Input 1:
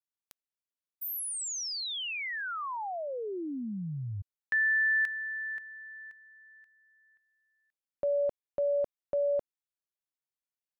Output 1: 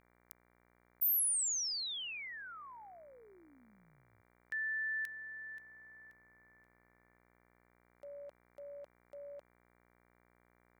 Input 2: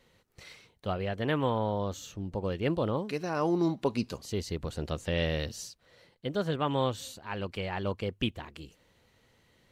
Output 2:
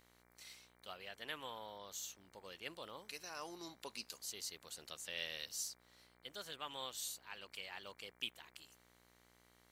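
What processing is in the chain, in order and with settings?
differentiator; mains buzz 60 Hz, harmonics 39, -72 dBFS -2 dB/octave; trim +1 dB

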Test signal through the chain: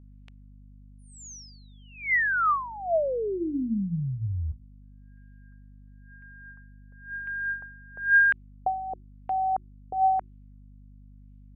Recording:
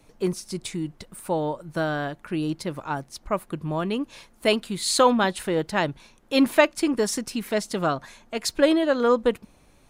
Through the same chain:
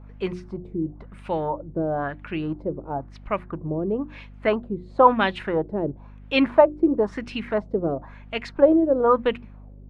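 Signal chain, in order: hum notches 60/120/180/240/300/360 Hz; LFO low-pass sine 0.99 Hz 410–2800 Hz; hum 50 Hz, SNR 20 dB; trim -1 dB

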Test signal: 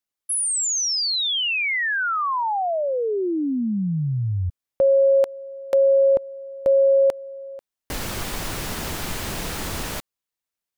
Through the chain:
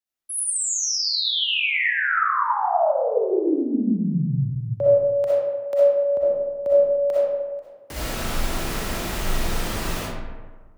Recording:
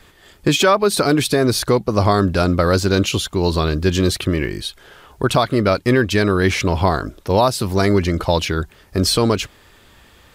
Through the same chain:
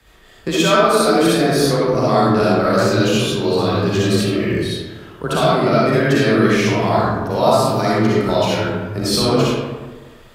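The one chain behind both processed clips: algorithmic reverb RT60 1.4 s, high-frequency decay 0.5×, pre-delay 20 ms, DRR -8 dB; frequency shift +21 Hz; trim -7 dB

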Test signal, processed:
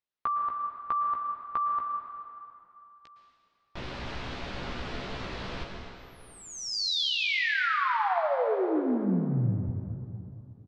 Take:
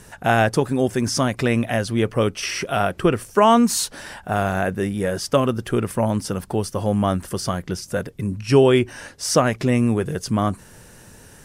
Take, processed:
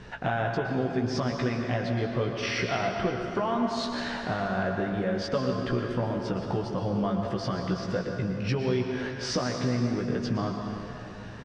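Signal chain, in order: low-pass 4.3 kHz 24 dB/octave; dynamic bell 2.7 kHz, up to -5 dB, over -45 dBFS, Q 4.1; compression, threshold -28 dBFS; doubling 16 ms -5 dB; plate-style reverb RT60 2.8 s, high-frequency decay 0.8×, pre-delay 100 ms, DRR 2.5 dB

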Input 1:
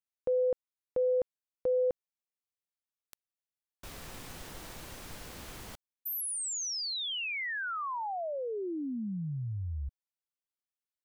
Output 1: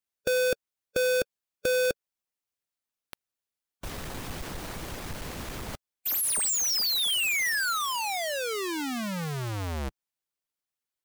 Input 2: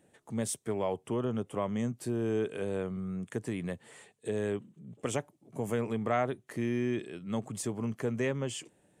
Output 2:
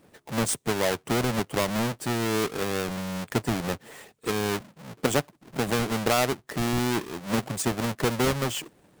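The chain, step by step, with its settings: square wave that keeps the level; harmonic-percussive split harmonic -6 dB; trim +6 dB

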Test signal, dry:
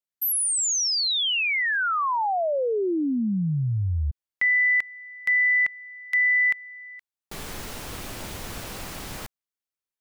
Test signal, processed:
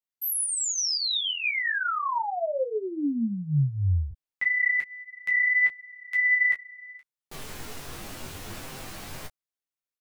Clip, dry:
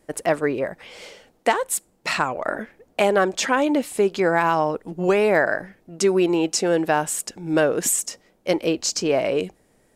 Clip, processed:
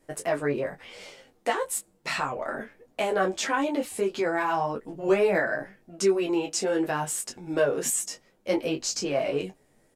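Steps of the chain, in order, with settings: in parallel at -1.5 dB: peak limiter -17.5 dBFS; on the sum: chorus voices 4, 0.73 Hz, delay 11 ms, depth 3.6 ms; doubling 21 ms -6 dB; trim -7 dB

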